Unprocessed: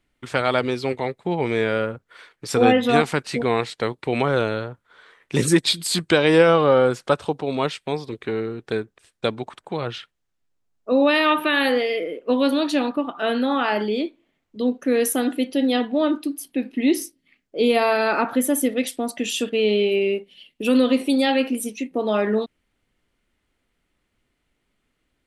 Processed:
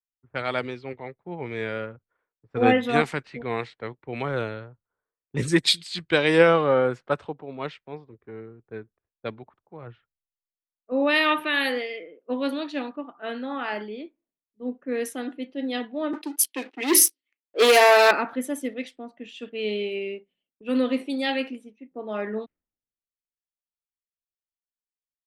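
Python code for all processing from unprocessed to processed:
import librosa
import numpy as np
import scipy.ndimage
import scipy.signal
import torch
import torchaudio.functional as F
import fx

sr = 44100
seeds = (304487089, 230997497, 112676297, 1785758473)

y = fx.chain(x, sr, fx.leveller(passes=3),
    fx.highpass(hz=330.0, slope=24),
    fx.high_shelf(hz=10000.0, db=10.0), at=(16.13, 18.11))
y = fx.dynamic_eq(y, sr, hz=2000.0, q=2.1, threshold_db=-38.0, ratio=4.0, max_db=5)
y = fx.env_lowpass(y, sr, base_hz=780.0, full_db=-14.0)
y = fx.band_widen(y, sr, depth_pct=100)
y = y * 10.0 ** (-8.0 / 20.0)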